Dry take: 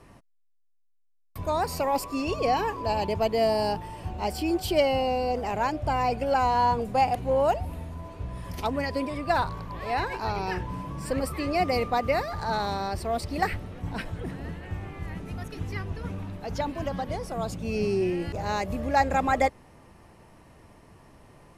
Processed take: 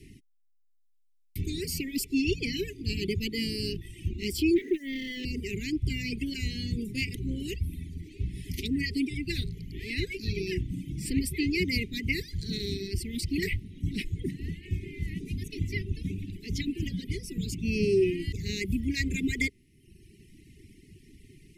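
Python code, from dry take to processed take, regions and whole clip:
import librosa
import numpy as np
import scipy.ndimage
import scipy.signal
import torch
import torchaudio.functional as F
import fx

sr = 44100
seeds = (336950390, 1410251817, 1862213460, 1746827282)

y = fx.chain(x, sr, fx.brickwall_bandpass(low_hz=250.0, high_hz=2000.0),
    fx.over_compress(threshold_db=-31.0, ratio=-1.0),
    fx.leveller(passes=3), at=(4.56, 5.25))
y = scipy.signal.sosfilt(scipy.signal.cheby1(5, 1.0, [400.0, 2000.0], 'bandstop', fs=sr, output='sos'), y)
y = fx.dereverb_blind(y, sr, rt60_s=1.1)
y = F.gain(torch.from_numpy(y), 4.5).numpy()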